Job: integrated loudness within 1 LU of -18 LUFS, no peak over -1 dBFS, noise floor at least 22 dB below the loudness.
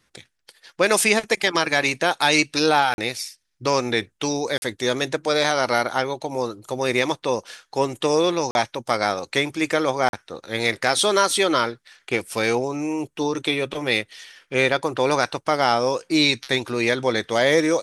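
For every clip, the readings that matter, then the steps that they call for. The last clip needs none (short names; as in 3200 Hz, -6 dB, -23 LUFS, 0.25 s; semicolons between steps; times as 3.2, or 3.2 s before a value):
dropouts 4; longest dropout 41 ms; loudness -21.5 LUFS; peak -3.0 dBFS; loudness target -18.0 LUFS
-> interpolate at 2.94/4.58/8.51/10.09, 41 ms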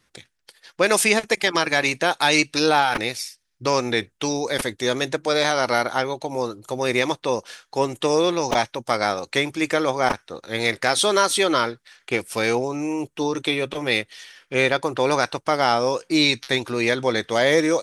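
dropouts 0; loudness -21.5 LUFS; peak -3.0 dBFS; loudness target -18.0 LUFS
-> gain +3.5 dB; limiter -1 dBFS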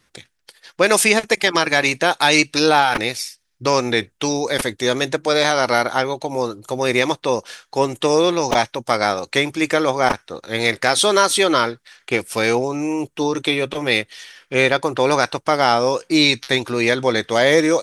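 loudness -18.0 LUFS; peak -1.0 dBFS; noise floor -67 dBFS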